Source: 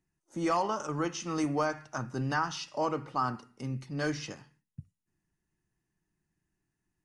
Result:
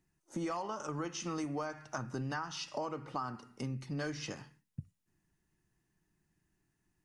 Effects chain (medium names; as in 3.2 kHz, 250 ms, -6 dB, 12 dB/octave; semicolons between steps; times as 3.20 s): compression 6:1, threshold -39 dBFS, peak gain reduction 14 dB; trim +3.5 dB